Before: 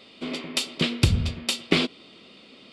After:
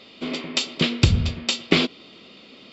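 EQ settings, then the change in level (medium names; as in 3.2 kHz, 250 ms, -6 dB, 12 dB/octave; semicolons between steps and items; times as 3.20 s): brick-wall FIR low-pass 7.7 kHz; +3.0 dB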